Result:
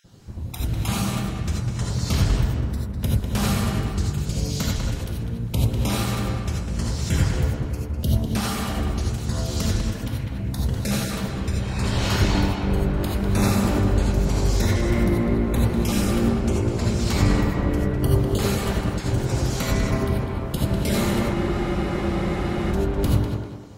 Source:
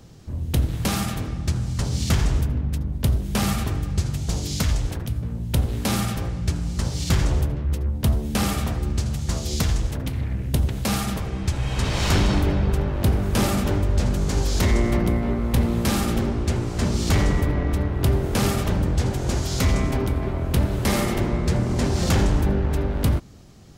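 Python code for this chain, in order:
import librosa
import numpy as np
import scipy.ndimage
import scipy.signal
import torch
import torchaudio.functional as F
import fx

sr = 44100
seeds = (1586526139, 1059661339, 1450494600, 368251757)

p1 = fx.spec_dropout(x, sr, seeds[0], share_pct=23)
p2 = p1 + fx.echo_tape(p1, sr, ms=199, feedback_pct=44, wet_db=-3.5, lp_hz=3100.0, drive_db=8.0, wow_cents=28, dry=0)
p3 = fx.rev_gated(p2, sr, seeds[1], gate_ms=110, shape='rising', drr_db=-0.5)
p4 = fx.spec_freeze(p3, sr, seeds[2], at_s=21.37, hold_s=1.36)
y = F.gain(torch.from_numpy(p4), -3.5).numpy()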